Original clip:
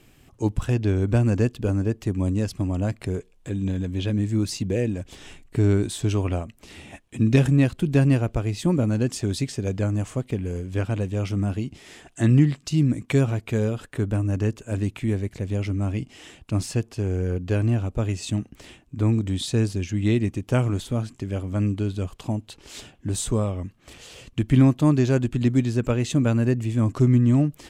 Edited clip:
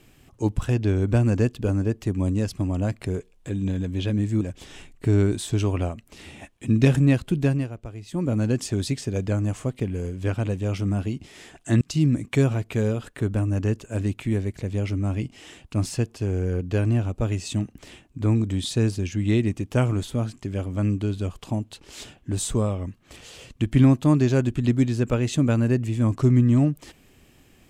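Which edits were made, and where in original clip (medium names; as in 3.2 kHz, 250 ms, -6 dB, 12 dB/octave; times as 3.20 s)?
4.41–4.92 s: delete
7.86–8.91 s: dip -12 dB, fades 0.34 s
12.32–12.58 s: delete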